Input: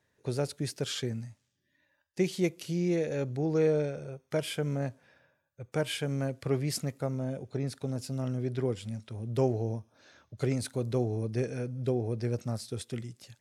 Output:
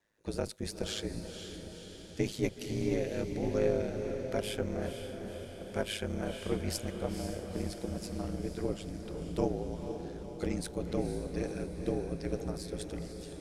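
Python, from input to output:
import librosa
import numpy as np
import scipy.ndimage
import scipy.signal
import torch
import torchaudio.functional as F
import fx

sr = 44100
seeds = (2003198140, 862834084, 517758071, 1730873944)

y = fx.octave_divider(x, sr, octaves=2, level_db=1.0)
y = fx.highpass(y, sr, hz=170.0, slope=6)
y = y * np.sin(2.0 * np.pi * 53.0 * np.arange(len(y)) / sr)
y = fx.echo_diffused(y, sr, ms=492, feedback_pct=62, wet_db=-7.5)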